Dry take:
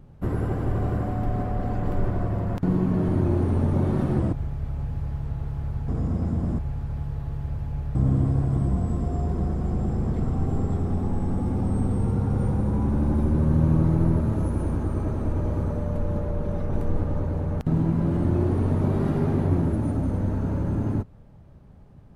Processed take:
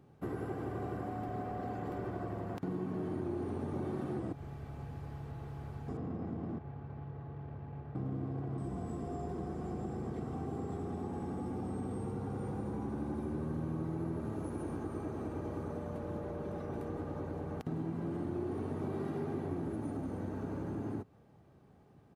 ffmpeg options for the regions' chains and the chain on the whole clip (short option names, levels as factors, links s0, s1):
-filter_complex "[0:a]asettb=1/sr,asplit=3[s0][s1][s2];[s0]atrim=end=5.974[s3];[s1]atrim=start=5.97:end=8.58,asetpts=PTS-STARTPTS,afade=t=in:d=0.004:c=qsin,afade=t=out:st=2.606:d=0.004:c=qsin,highpass=f=77:w=0.5412,highpass=f=77:w=1.3066,adynamicsmooth=sensitivity=6.5:basefreq=1300[s4];[s2]atrim=start=8.576[s5];[s3][s4]acrossfade=d=0.004:c1=hsin:c2=qsin[s6];[s6][s5]acrossfade=d=0.004:c1=qsin:c2=hsin,highpass=160,aecho=1:1:2.6:0.32,acompressor=threshold=0.0282:ratio=2.5,volume=0.531"